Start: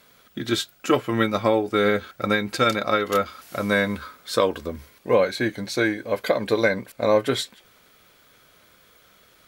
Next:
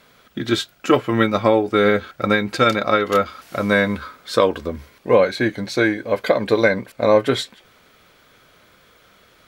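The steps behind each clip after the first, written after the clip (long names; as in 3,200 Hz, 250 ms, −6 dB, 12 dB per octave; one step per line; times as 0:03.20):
high-shelf EQ 6,500 Hz −9.5 dB
level +4.5 dB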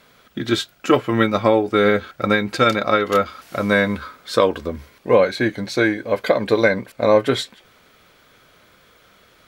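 no processing that can be heard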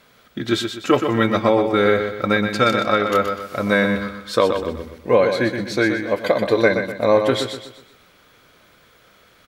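repeating echo 124 ms, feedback 40%, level −7 dB
level −1 dB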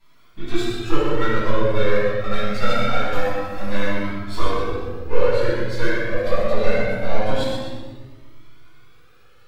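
gain on one half-wave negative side −12 dB
convolution reverb RT60 1.4 s, pre-delay 6 ms, DRR −11.5 dB
flanger whose copies keep moving one way rising 0.24 Hz
level −11 dB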